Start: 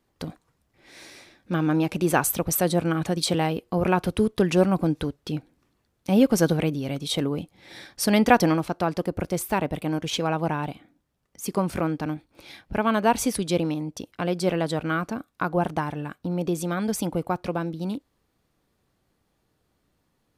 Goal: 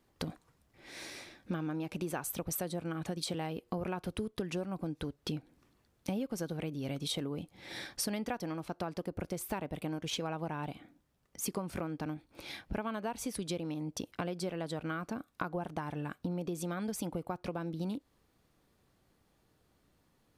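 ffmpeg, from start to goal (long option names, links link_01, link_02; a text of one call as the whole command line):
ffmpeg -i in.wav -af "acompressor=threshold=-33dB:ratio=12" out.wav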